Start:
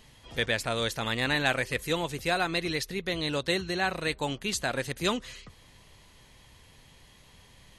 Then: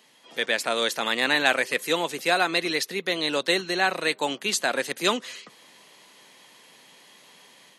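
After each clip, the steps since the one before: Bessel high-pass 310 Hz, order 8; level rider gain up to 6 dB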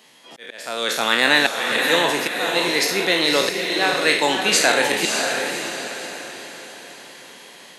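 spectral sustain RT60 0.60 s; slow attack 606 ms; echo that smears into a reverb 574 ms, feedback 44%, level -4.5 dB; trim +5 dB

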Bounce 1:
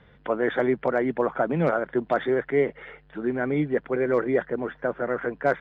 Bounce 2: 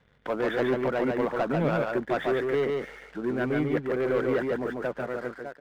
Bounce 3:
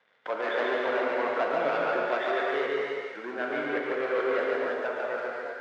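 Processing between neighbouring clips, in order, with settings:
fade out at the end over 0.83 s; waveshaping leveller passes 2; delay 143 ms -3 dB; trim -8.5 dB
band-pass 570–4900 Hz; gated-style reverb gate 370 ms flat, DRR -1.5 dB

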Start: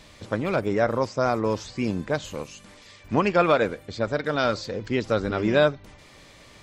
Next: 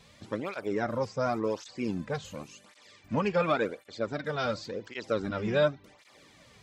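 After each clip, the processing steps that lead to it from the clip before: cancelling through-zero flanger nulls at 0.91 Hz, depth 3.5 ms; trim -4 dB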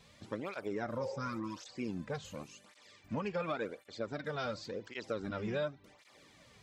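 spectral replace 1.04–1.66 s, 350–910 Hz both; compression 2.5:1, threshold -31 dBFS, peak gain reduction 8 dB; trim -4 dB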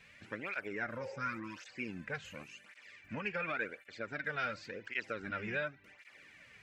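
high-order bell 2 kHz +13.5 dB 1.2 oct; trim -5 dB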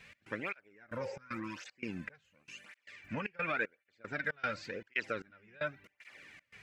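trance gate "x.xx...xx.xx" 115 bpm -24 dB; trim +3 dB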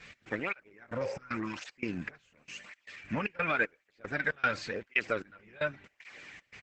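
resampled via 32 kHz; trim +6 dB; Opus 10 kbps 48 kHz

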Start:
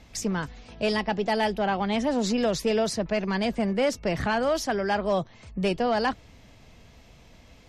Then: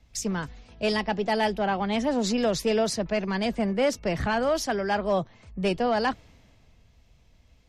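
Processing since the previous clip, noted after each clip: three bands expanded up and down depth 40%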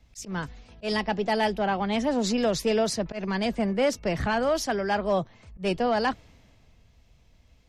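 slow attack 118 ms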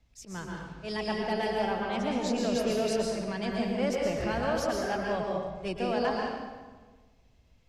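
reverberation RT60 1.4 s, pre-delay 112 ms, DRR -1.5 dB; trim -8 dB

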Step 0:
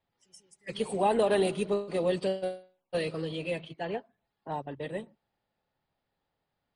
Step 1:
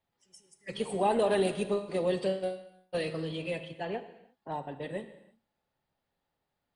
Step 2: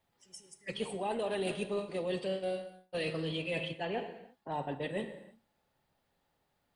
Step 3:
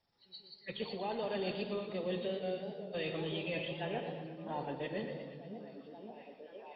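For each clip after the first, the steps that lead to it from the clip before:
gated-style reverb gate 370 ms falling, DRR 9.5 dB; trim -1.5 dB
dynamic bell 2.8 kHz, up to +5 dB, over -54 dBFS, Q 1.8; reverse; compression 6:1, threshold -38 dBFS, peak gain reduction 15 dB; reverse; trim +5.5 dB
knee-point frequency compression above 3.5 kHz 4:1; repeats whose band climbs or falls 532 ms, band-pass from 180 Hz, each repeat 0.7 oct, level -3.5 dB; modulated delay 118 ms, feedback 61%, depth 106 cents, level -9.5 dB; trim -3.5 dB

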